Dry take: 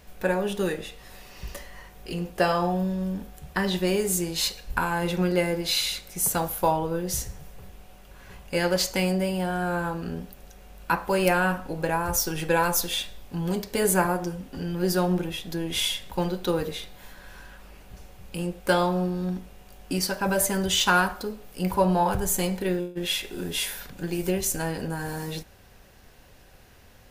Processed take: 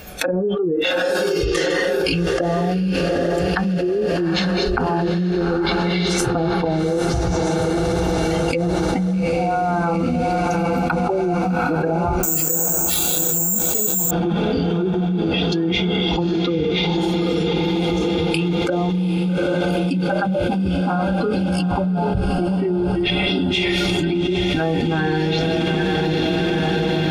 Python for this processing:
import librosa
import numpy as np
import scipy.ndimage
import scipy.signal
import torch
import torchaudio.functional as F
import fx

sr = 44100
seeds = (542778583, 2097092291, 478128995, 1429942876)

y = fx.high_shelf(x, sr, hz=12000.0, db=-7.0)
y = fx.echo_thinned(y, sr, ms=157, feedback_pct=35, hz=480.0, wet_db=-17)
y = fx.env_lowpass_down(y, sr, base_hz=350.0, full_db=-21.0)
y = fx.noise_reduce_blind(y, sr, reduce_db=25)
y = fx.rider(y, sr, range_db=4, speed_s=0.5)
y = fx.notch_comb(y, sr, f0_hz=980.0)
y = fx.echo_diffused(y, sr, ms=820, feedback_pct=74, wet_db=-8)
y = fx.resample_bad(y, sr, factor=6, down='none', up='zero_stuff', at=(12.23, 14.11))
y = fx.env_flatten(y, sr, amount_pct=100)
y = y * librosa.db_to_amplitude(-1.0)